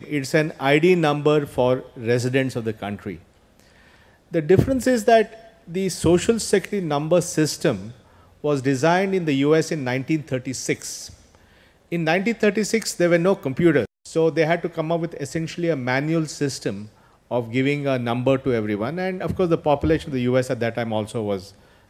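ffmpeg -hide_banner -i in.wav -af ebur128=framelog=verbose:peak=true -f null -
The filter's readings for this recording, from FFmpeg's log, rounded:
Integrated loudness:
  I:         -21.7 LUFS
  Threshold: -32.2 LUFS
Loudness range:
  LRA:         3.6 LU
  Threshold: -42.3 LUFS
  LRA low:   -24.3 LUFS
  LRA high:  -20.7 LUFS
True peak:
  Peak:       -1.2 dBFS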